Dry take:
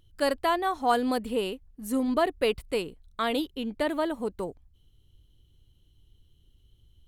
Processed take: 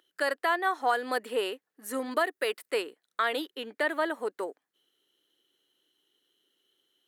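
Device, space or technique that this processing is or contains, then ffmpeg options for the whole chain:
laptop speaker: -filter_complex "[0:a]asettb=1/sr,asplit=3[a][b][c];[a]atrim=end=2.114[d];[b]atrim=start=2.11:end=2.69,asetpts=PTS-STARTPTS,afade=t=in:d=0.004:c=qsin,afade=t=out:st=0.576:d=0.004:c=qsin,highshelf=f=5.9k:g=9[e];[c]atrim=start=2.686[f];[d][e]acrossfade=d=0.004:c1=hsin:c2=qsin[g];[g][f]acrossfade=d=0.004:c1=qsin:c2=hsin,highpass=f=340:w=0.5412,highpass=f=340:w=1.3066,equalizer=f=1.4k:t=o:w=0.45:g=5.5,equalizer=f=1.8k:t=o:w=0.4:g=9,alimiter=limit=-15.5dB:level=0:latency=1:release=310"

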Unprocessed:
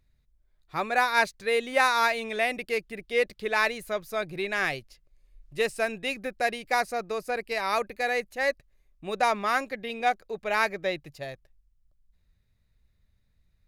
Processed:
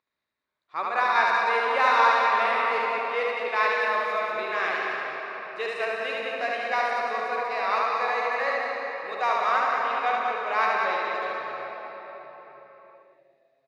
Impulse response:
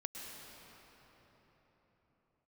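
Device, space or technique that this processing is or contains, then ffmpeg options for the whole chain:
station announcement: -filter_complex "[0:a]asettb=1/sr,asplit=3[a][b][c];[a]atrim=end=9.074[d];[b]atrim=start=9.07:end=9.52,asetpts=PTS-STARTPTS,afade=t=in:d=0.004:c=qsin,afade=t=out:st=0.446:d=0.004:c=qsin,lowshelf=f=320:g=-5[e];[c]atrim=start=9.516[f];[d][e]acrossfade=d=0.004:c1=hsin:c2=qsin[g];[g][f]acrossfade=d=0.004:c1=qsin:c2=hsin,highpass=450,lowpass=4.3k,equalizer=f=1.1k:t=o:w=0.41:g=9,aecho=1:1:72.89|192.4:0.794|0.447[h];[1:a]atrim=start_sample=2205[i];[h][i]afir=irnorm=-1:irlink=0"

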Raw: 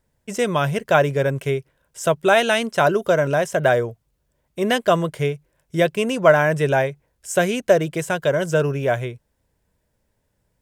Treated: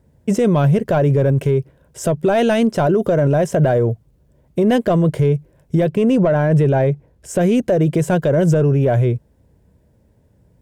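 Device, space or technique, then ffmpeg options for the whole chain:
mastering chain: -filter_complex "[0:a]highpass=58,equalizer=f=1.2k:t=o:w=0.77:g=-2,acompressor=threshold=-19dB:ratio=2.5,asoftclip=type=tanh:threshold=-13.5dB,tiltshelf=f=760:g=8.5,alimiter=level_in=17.5dB:limit=-1dB:release=50:level=0:latency=1,asettb=1/sr,asplit=3[a][b][c];[a]atrim=end=5.884[d];[b]atrim=start=5.88:end=7.41,asetpts=PTS-STARTPTS,afade=t=in:d=0.004:c=qsin,afade=t=out:st=1.526:d=0.004:c=qsin,highshelf=f=5.6k:g=-6[e];[c]atrim=start=7.406[f];[d][e]acrossfade=d=0.004:c1=hsin:c2=qsin[g];[g][f]acrossfade=d=0.004:c1=qsin:c2=hsin,volume=-7.5dB"

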